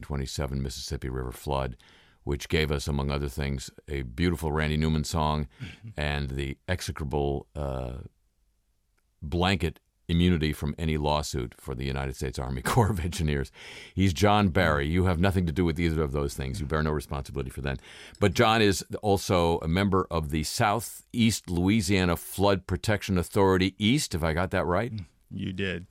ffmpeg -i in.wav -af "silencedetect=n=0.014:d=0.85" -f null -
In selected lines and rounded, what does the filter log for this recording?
silence_start: 8.06
silence_end: 9.22 | silence_duration: 1.16